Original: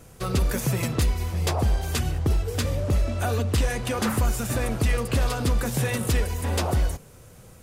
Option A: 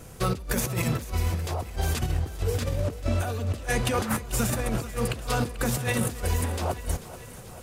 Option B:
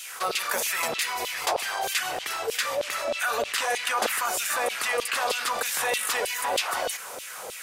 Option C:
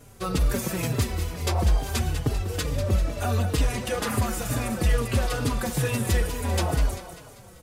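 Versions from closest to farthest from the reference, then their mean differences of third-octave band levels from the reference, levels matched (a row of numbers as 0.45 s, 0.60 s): C, A, B; 3.0 dB, 5.5 dB, 12.5 dB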